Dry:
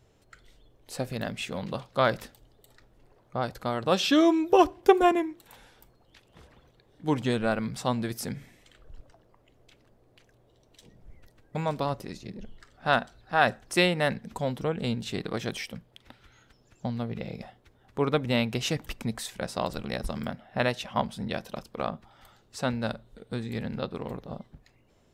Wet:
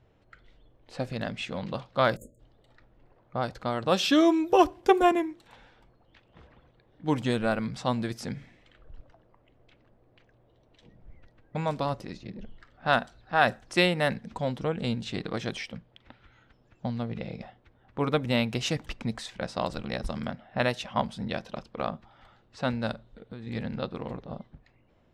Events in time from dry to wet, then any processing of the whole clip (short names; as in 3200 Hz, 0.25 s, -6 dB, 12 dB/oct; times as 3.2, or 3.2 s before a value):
2.16–2.4 spectral delete 630–6500 Hz
22.92–23.47 compressor, threshold -36 dBFS
whole clip: low-pass opened by the level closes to 2800 Hz, open at -22 dBFS; notch 410 Hz, Q 12